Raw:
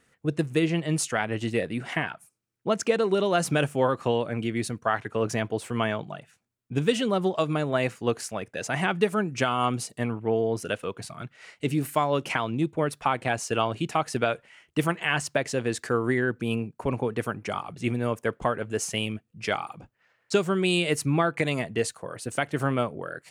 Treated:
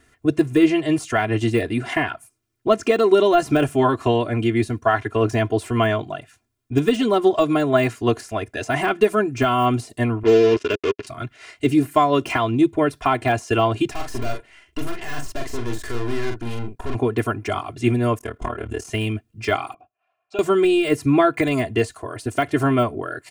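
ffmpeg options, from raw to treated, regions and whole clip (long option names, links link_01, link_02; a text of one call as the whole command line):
ffmpeg -i in.wav -filter_complex "[0:a]asettb=1/sr,asplit=3[link_01][link_02][link_03];[link_01]atrim=end=10.234[link_04];[link_02]atrim=start=10.23:end=11.07,asetpts=PTS-STARTPTS,afade=type=in:duration=0.004:curve=qsin,afade=type=out:start_time=0.836:duration=0.004:curve=qsin,acrusher=bits=4:mix=0:aa=0.5,highpass=140,equalizer=frequency=410:width_type=q:width=4:gain=9,equalizer=frequency=740:width_type=q:width=4:gain=-9,equalizer=frequency=2700:width_type=q:width=4:gain=6,equalizer=frequency=4100:width_type=q:width=4:gain=-4,lowpass=frequency=6400:width=0.5412,lowpass=frequency=6400:width=1.3066[link_05];[link_03]atrim=start=11.066[link_06];[link_04][link_05]acrossfade=duration=0.004:curve1=hsin:curve2=qsin[link_07];[link_07][link_06]acrossfade=duration=0.004:curve1=qsin:curve2=hsin,asettb=1/sr,asplit=3[link_08][link_09][link_10];[link_08]atrim=end=13.914[link_11];[link_09]atrim=start=13.91:end=16.95,asetpts=PTS-STARTPTS,afade=type=in:duration=0.004:curve=qsin,afade=type=out:start_time=3.036:duration=0.004:curve=qsin,aeval=exprs='(tanh(50.1*val(0)+0.75)-tanh(0.75))/50.1':channel_layout=same,asplit=2[link_12][link_13];[link_13]adelay=42,volume=-5dB[link_14];[link_12][link_14]amix=inputs=2:normalize=0,atrim=end_sample=134064[link_15];[link_10]atrim=start=16.946[link_16];[link_11][link_15]acrossfade=duration=0.004:curve1=hsin:curve2=qsin[link_17];[link_17][link_16]acrossfade=duration=0.004:curve1=qsin:curve2=hsin,asettb=1/sr,asplit=3[link_18][link_19][link_20];[link_18]atrim=end=18.184[link_21];[link_19]atrim=start=18.18:end=18.87,asetpts=PTS-STARTPTS,afade=type=in:duration=0.004:curve=qsin,afade=type=out:start_time=0.686:duration=0.004:curve=qsin,acompressor=threshold=-29dB:ratio=4:attack=3.2:release=140:knee=1:detection=peak,tremolo=f=37:d=0.889,asplit=2[link_22][link_23];[link_23]adelay=25,volume=-3dB[link_24];[link_22][link_24]amix=inputs=2:normalize=0,atrim=end_sample=30429[link_25];[link_20]atrim=start=18.866[link_26];[link_21][link_25]acrossfade=duration=0.004:curve1=hsin:curve2=qsin[link_27];[link_27][link_26]acrossfade=duration=0.004:curve1=qsin:curve2=hsin,asettb=1/sr,asplit=3[link_28][link_29][link_30];[link_28]atrim=end=19.744[link_31];[link_29]atrim=start=19.74:end=20.39,asetpts=PTS-STARTPTS,afade=type=in:duration=0.004:curve=qsin,afade=type=out:start_time=0.646:duration=0.004:curve=qsin,asubboost=boost=11.5:cutoff=180,asplit=3[link_32][link_33][link_34];[link_32]bandpass=frequency=730:width_type=q:width=8,volume=0dB[link_35];[link_33]bandpass=frequency=1090:width_type=q:width=8,volume=-6dB[link_36];[link_34]bandpass=frequency=2440:width_type=q:width=8,volume=-9dB[link_37];[link_35][link_36][link_37]amix=inputs=3:normalize=0[link_38];[link_30]atrim=start=20.386[link_39];[link_31][link_38]acrossfade=duration=0.004:curve1=hsin:curve2=qsin[link_40];[link_40][link_39]acrossfade=duration=0.004:curve1=qsin:curve2=hsin,deesser=0.95,lowshelf=frequency=150:gain=8.5,aecho=1:1:2.9:0.99,volume=4dB" out.wav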